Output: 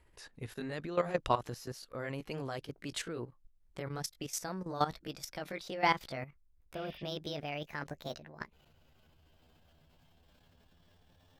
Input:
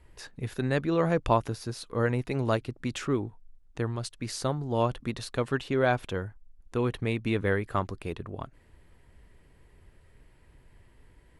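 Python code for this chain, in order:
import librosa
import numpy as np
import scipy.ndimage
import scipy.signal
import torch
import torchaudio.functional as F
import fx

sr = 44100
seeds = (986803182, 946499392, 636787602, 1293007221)

y = fx.pitch_glide(x, sr, semitones=10.0, runs='starting unshifted')
y = fx.low_shelf(y, sr, hz=340.0, db=-5.0)
y = fx.level_steps(y, sr, step_db=13)
y = fx.dynamic_eq(y, sr, hz=5300.0, q=0.76, threshold_db=-53.0, ratio=4.0, max_db=4)
y = fx.spec_repair(y, sr, seeds[0], start_s=6.78, length_s=0.21, low_hz=1700.0, high_hz=9400.0, source='after')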